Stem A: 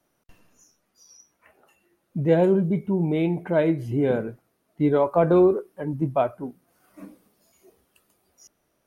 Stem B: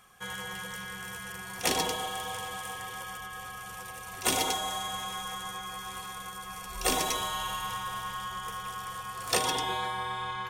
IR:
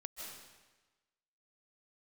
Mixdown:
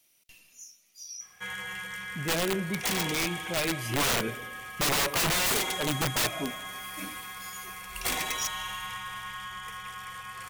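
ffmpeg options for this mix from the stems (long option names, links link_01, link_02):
-filter_complex "[0:a]bandreject=frequency=2100:width=30,aexciter=amount=5.3:drive=7.9:freq=2500,volume=-2dB,afade=type=in:start_time=3.66:duration=0.57:silence=0.354813,asplit=2[link_01][link_02];[link_02]volume=-14dB[link_03];[1:a]adynamicequalizer=threshold=0.00501:dfrequency=520:dqfactor=0.77:tfrequency=520:tqfactor=0.77:attack=5:release=100:ratio=0.375:range=3:mode=cutabove:tftype=bell,adelay=1200,volume=-4dB[link_04];[2:a]atrim=start_sample=2205[link_05];[link_03][link_05]afir=irnorm=-1:irlink=0[link_06];[link_01][link_04][link_06]amix=inputs=3:normalize=0,equalizer=frequency=2100:width=1.8:gain=12,aeval=exprs='(mod(11.2*val(0)+1,2)-1)/11.2':channel_layout=same"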